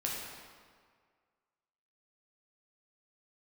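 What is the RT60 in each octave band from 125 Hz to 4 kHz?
1.7 s, 1.7 s, 1.8 s, 1.9 s, 1.6 s, 1.3 s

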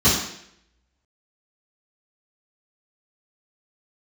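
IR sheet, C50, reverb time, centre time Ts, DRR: 2.5 dB, 0.70 s, 49 ms, -13.0 dB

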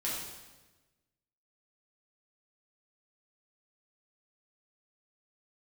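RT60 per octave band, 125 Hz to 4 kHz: 1.5 s, 1.4 s, 1.3 s, 1.1 s, 1.1 s, 1.1 s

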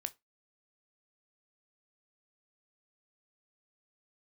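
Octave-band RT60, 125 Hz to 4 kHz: 0.20 s, 0.25 s, 0.20 s, 0.20 s, 0.20 s, 0.15 s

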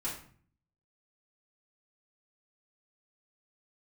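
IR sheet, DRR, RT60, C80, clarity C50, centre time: -8.0 dB, 0.50 s, 10.0 dB, 5.5 dB, 31 ms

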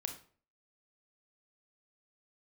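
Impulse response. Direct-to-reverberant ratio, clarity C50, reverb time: 5.0 dB, 9.0 dB, 0.45 s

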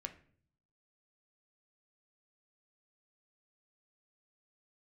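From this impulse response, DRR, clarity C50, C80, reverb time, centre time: 6.0 dB, 13.5 dB, 17.5 dB, 0.50 s, 8 ms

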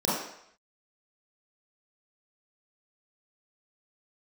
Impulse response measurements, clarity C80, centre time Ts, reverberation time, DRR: 4.0 dB, 66 ms, 0.70 s, -8.5 dB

